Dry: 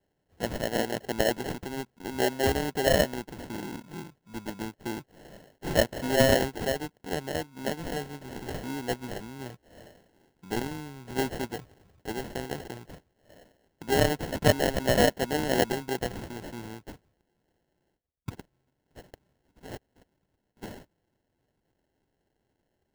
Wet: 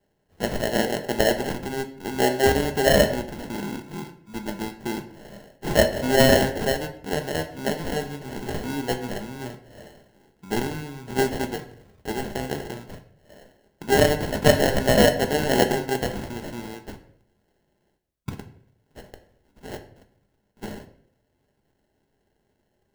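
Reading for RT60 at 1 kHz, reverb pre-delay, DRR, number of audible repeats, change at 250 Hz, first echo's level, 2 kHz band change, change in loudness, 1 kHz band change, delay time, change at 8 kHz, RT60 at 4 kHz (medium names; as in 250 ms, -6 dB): 0.55 s, 5 ms, 5.5 dB, no echo, +5.5 dB, no echo, +5.5 dB, +5.5 dB, +5.5 dB, no echo, +5.0 dB, 0.45 s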